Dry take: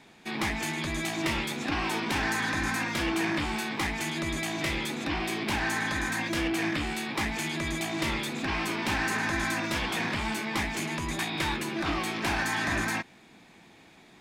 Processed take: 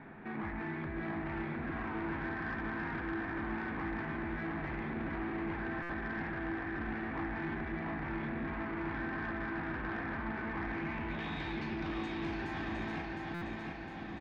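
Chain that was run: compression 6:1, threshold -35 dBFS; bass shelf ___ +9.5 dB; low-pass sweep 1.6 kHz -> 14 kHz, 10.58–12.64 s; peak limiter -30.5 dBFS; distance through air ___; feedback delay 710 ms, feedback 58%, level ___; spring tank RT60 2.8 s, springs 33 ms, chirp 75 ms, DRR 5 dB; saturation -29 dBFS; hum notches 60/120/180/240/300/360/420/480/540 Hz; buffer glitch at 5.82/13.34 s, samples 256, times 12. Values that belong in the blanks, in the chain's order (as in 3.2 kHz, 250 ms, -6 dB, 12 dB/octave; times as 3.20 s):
460 Hz, 230 m, -4 dB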